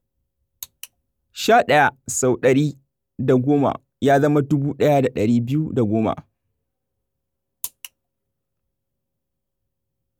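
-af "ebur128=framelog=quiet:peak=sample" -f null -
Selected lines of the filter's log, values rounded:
Integrated loudness:
  I:         -18.9 LUFS
  Threshold: -30.1 LUFS
Loudness range:
  LRA:        21.4 LU
  Threshold: -41.2 LUFS
  LRA low:   -40.3 LUFS
  LRA high:  -18.9 LUFS
Sample peak:
  Peak:       -4.7 dBFS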